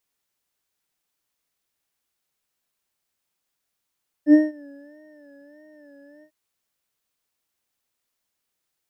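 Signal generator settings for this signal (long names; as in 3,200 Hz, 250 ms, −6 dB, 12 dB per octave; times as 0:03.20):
subtractive patch with vibrato D5, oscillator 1 triangle, oscillator 2 square, interval +19 semitones, detune 6 cents, oscillator 2 level −2 dB, sub −13.5 dB, noise −28 dB, filter bandpass, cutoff 150 Hz, Q 12, filter envelope 1 octave, filter decay 0.89 s, attack 78 ms, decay 0.18 s, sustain −24 dB, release 0.08 s, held 1.97 s, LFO 1.6 Hz, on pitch 79 cents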